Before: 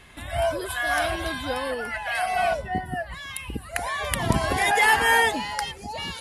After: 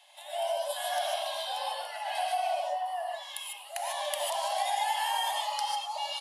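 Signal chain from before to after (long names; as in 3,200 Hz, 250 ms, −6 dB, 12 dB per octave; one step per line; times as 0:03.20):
Chebyshev high-pass with heavy ripple 570 Hz, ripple 6 dB
flat-topped bell 1,700 Hz −14.5 dB 1.3 octaves
echo with shifted repeats 107 ms, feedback 64%, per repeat +78 Hz, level −20 dB
reverb whose tail is shaped and stops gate 170 ms rising, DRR −1 dB
downward compressor 5 to 1, threshold −27 dBFS, peak gain reduction 9 dB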